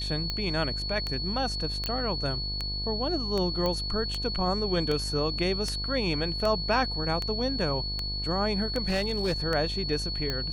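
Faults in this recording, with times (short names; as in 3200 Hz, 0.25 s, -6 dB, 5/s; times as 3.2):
buzz 50 Hz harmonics 22 -35 dBFS
tick 78 rpm -16 dBFS
tone 4400 Hz -32 dBFS
1.86 pop -15 dBFS
3.66 pop -16 dBFS
8.88–9.34 clipped -22 dBFS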